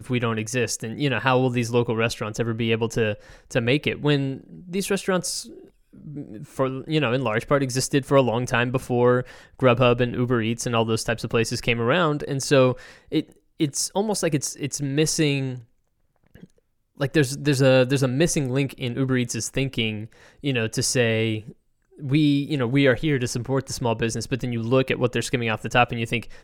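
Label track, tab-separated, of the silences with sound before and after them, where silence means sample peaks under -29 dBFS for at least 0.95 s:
15.550000	17.000000	silence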